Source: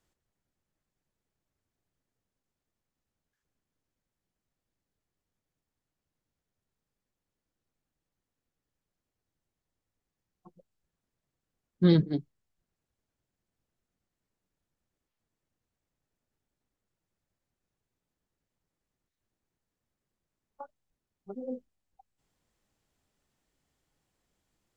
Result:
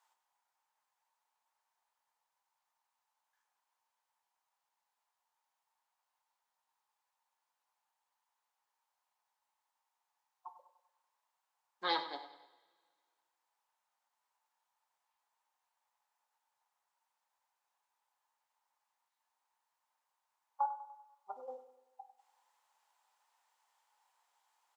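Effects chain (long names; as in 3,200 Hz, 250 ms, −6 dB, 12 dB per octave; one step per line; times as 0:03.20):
four-pole ladder high-pass 850 Hz, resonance 75%
on a send: repeating echo 98 ms, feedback 47%, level −13 dB
on the sum: coupled-rooms reverb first 0.37 s, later 1.9 s, from −20 dB, DRR 7.5 dB
level +12 dB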